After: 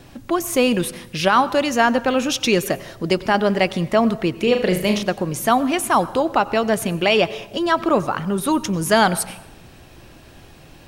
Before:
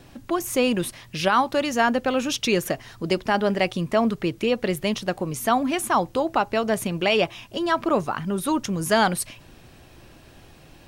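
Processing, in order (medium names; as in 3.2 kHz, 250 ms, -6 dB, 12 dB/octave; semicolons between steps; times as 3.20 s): 4.43–5.03 s: flutter echo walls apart 6.6 m, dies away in 0.42 s; on a send at -17 dB: reverberation RT60 1.0 s, pre-delay 83 ms; on the sum: trim +4 dB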